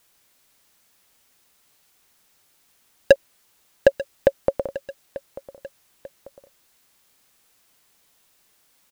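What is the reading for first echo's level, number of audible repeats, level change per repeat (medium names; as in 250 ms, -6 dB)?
-17.0 dB, 2, -6.5 dB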